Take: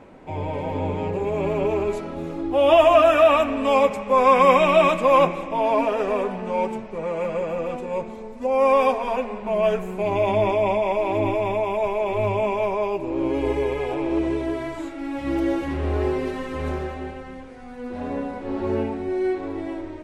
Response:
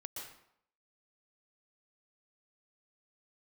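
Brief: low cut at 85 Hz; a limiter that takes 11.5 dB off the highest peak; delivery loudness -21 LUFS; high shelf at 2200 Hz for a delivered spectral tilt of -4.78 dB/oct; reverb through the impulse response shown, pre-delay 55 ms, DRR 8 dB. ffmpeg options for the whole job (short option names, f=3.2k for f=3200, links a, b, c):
-filter_complex "[0:a]highpass=85,highshelf=f=2.2k:g=3.5,alimiter=limit=-15dB:level=0:latency=1,asplit=2[a][b];[1:a]atrim=start_sample=2205,adelay=55[c];[b][c]afir=irnorm=-1:irlink=0,volume=-5.5dB[d];[a][d]amix=inputs=2:normalize=0,volume=3.5dB"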